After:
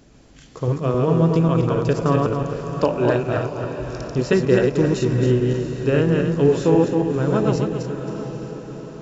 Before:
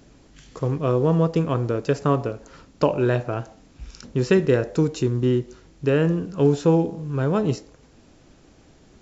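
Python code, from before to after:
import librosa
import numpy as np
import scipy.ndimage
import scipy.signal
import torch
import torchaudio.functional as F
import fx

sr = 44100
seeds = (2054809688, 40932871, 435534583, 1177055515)

y = fx.reverse_delay_fb(x, sr, ms=135, feedback_pct=54, wet_db=-2.0)
y = fx.echo_diffused(y, sr, ms=711, feedback_pct=52, wet_db=-10.5)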